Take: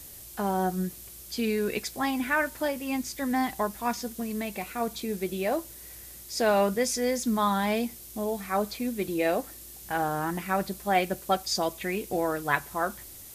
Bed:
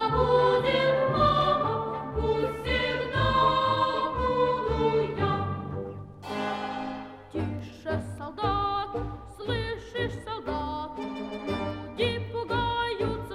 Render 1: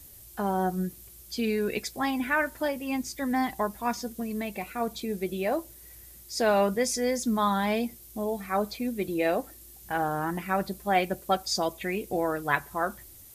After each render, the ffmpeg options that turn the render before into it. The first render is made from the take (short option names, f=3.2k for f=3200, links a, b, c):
-af "afftdn=nr=7:nf=-46"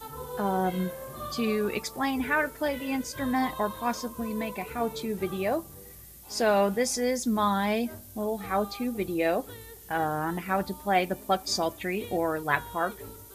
-filter_complex "[1:a]volume=-16dB[a];[0:a][a]amix=inputs=2:normalize=0"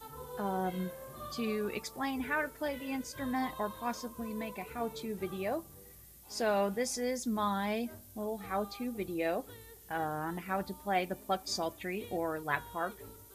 -af "volume=-7dB"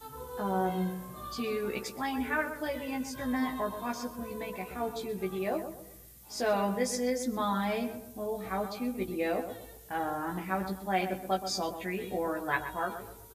-filter_complex "[0:a]asplit=2[a][b];[b]adelay=16,volume=-3dB[c];[a][c]amix=inputs=2:normalize=0,asplit=2[d][e];[e]adelay=125,lowpass=f=1.7k:p=1,volume=-8.5dB,asplit=2[f][g];[g]adelay=125,lowpass=f=1.7k:p=1,volume=0.38,asplit=2[h][i];[i]adelay=125,lowpass=f=1.7k:p=1,volume=0.38,asplit=2[j][k];[k]adelay=125,lowpass=f=1.7k:p=1,volume=0.38[l];[f][h][j][l]amix=inputs=4:normalize=0[m];[d][m]amix=inputs=2:normalize=0"